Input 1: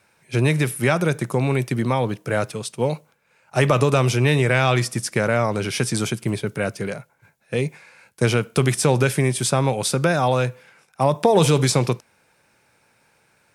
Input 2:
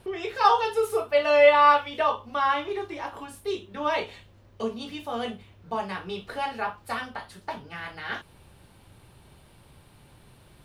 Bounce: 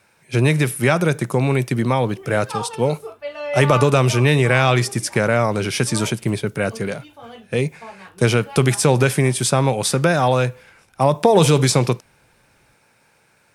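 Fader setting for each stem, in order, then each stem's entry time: +2.5, -8.5 dB; 0.00, 2.10 s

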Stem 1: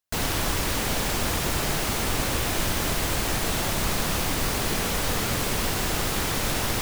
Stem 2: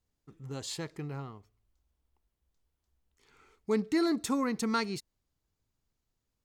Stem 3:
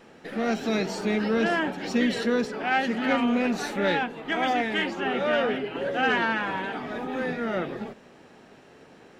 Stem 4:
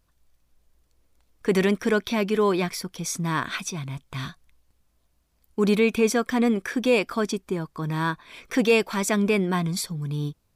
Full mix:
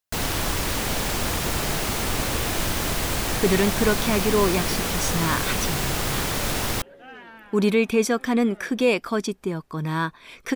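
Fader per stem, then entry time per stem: +0.5 dB, off, -19.5 dB, +0.5 dB; 0.00 s, off, 1.05 s, 1.95 s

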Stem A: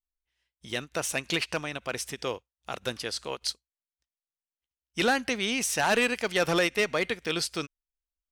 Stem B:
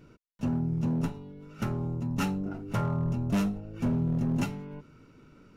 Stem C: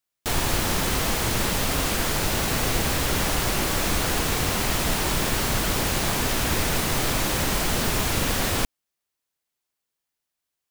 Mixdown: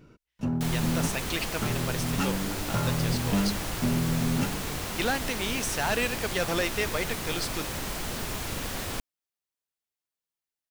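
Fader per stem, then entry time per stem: -3.5, +0.5, -9.5 dB; 0.00, 0.00, 0.35 s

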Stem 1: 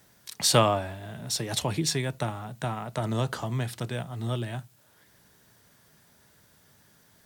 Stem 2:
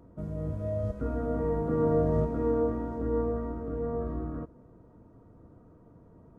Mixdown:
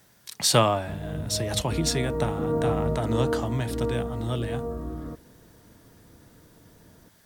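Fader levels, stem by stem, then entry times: +1.0, 0.0 dB; 0.00, 0.70 s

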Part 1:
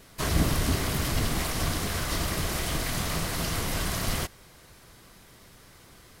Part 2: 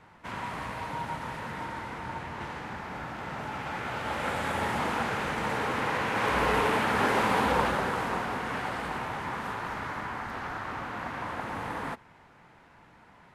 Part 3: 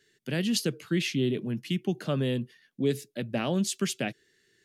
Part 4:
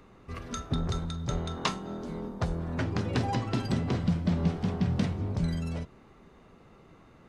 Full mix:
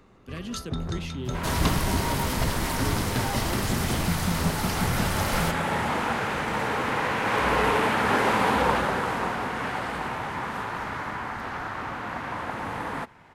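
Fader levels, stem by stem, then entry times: -0.5, +3.0, -9.0, -1.0 dB; 1.25, 1.10, 0.00, 0.00 s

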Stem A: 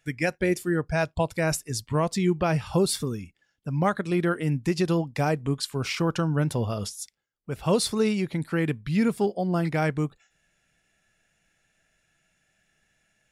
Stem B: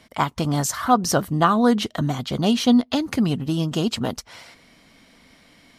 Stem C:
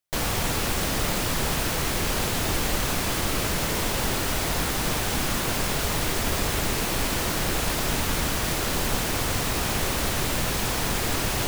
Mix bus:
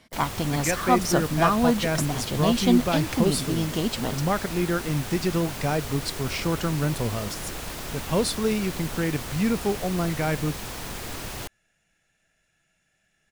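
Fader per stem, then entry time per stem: -1.0, -4.0, -9.0 dB; 0.45, 0.00, 0.00 s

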